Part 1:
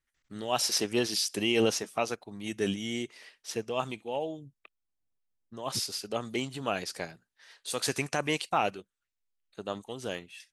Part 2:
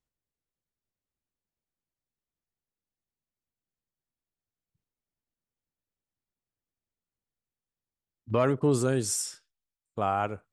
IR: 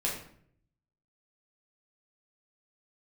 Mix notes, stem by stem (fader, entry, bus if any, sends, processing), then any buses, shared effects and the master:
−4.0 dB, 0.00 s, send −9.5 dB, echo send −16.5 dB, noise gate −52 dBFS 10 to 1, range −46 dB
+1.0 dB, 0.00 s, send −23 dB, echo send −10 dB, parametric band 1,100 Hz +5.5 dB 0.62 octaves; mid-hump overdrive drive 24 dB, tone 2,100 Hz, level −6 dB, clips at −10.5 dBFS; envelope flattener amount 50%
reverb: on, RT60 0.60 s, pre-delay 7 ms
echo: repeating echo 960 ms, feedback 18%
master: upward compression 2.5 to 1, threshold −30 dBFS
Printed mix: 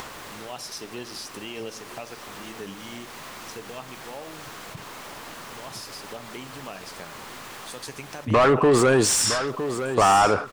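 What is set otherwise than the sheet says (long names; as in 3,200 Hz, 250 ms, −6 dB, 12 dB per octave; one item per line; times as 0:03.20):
stem 1 −4.0 dB → −12.5 dB
reverb return −7.0 dB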